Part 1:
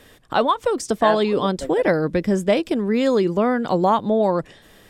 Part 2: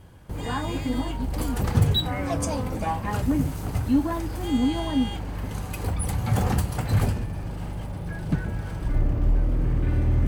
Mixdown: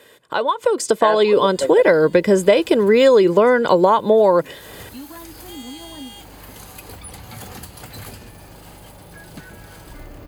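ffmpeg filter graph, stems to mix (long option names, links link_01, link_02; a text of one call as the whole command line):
ffmpeg -i stem1.wav -i stem2.wav -filter_complex "[0:a]highpass=210,aecho=1:1:2:0.5,acompressor=threshold=-18dB:ratio=6,volume=0.5dB,asplit=2[link_01][link_02];[1:a]bass=frequency=250:gain=-12,treble=frequency=4000:gain=14,acrossover=split=410|1300|5300[link_03][link_04][link_05][link_06];[link_03]acompressor=threshold=-34dB:ratio=4[link_07];[link_04]acompressor=threshold=-44dB:ratio=4[link_08];[link_05]acompressor=threshold=-39dB:ratio=4[link_09];[link_06]acompressor=threshold=-37dB:ratio=4[link_10];[link_07][link_08][link_09][link_10]amix=inputs=4:normalize=0,equalizer=frequency=8300:width=1.9:gain=-6.5,adelay=1050,volume=-13.5dB[link_11];[link_02]apad=whole_len=499523[link_12];[link_11][link_12]sidechaincompress=threshold=-26dB:ratio=8:attack=8:release=517[link_13];[link_01][link_13]amix=inputs=2:normalize=0,dynaudnorm=framelen=400:gausssize=3:maxgain=12dB,equalizer=frequency=5700:width_type=o:width=0.2:gain=-7" out.wav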